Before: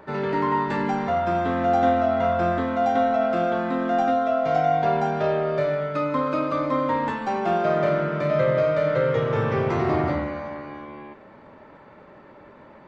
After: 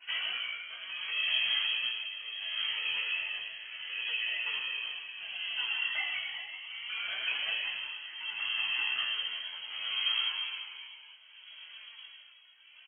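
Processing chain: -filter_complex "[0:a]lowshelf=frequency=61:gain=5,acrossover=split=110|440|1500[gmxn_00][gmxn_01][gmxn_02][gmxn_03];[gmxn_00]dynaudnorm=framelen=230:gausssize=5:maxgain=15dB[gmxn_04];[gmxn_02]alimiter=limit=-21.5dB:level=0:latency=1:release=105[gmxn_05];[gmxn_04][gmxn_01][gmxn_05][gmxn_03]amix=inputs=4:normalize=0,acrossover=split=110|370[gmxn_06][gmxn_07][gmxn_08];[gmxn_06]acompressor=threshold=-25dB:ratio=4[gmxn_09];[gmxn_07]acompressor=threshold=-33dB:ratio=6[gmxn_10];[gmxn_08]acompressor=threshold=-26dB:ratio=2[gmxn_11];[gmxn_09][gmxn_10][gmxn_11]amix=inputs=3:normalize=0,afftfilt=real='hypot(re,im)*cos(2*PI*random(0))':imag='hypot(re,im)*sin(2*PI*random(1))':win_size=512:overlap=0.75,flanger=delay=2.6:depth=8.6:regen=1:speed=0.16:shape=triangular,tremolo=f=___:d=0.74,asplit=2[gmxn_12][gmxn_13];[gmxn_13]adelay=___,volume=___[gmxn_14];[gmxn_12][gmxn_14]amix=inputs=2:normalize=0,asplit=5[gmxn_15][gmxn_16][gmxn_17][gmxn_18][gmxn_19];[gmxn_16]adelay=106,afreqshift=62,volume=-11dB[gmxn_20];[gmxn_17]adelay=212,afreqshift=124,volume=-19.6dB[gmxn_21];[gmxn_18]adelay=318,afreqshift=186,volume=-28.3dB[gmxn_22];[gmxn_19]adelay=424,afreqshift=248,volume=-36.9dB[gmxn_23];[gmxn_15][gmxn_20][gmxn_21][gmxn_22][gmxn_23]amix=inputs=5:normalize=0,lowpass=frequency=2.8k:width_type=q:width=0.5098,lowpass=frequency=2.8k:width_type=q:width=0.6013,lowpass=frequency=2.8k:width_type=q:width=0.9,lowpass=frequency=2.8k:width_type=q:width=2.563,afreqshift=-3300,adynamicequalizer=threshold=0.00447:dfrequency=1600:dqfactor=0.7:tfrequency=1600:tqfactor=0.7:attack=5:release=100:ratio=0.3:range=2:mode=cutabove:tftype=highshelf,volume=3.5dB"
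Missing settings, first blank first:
0.68, 17, -3.5dB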